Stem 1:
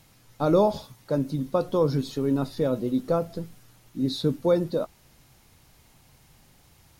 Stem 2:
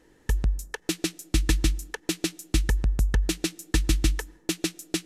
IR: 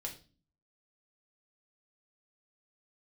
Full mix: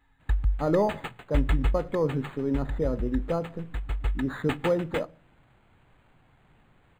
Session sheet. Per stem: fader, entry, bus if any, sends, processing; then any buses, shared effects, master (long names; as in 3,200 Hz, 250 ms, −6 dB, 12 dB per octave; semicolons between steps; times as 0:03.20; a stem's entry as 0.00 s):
−4.5 dB, 0.20 s, send −10.5 dB, no processing
0:01.70 −5.5 dB → 0:02.50 −13.5 dB → 0:03.83 −13.5 dB → 0:04.45 −1.5 dB, 0.00 s, no send, brick-wall band-stop 280–790 Hz; comb filter 2.4 ms, depth 93%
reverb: on, RT60 0.35 s, pre-delay 4 ms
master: linearly interpolated sample-rate reduction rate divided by 8×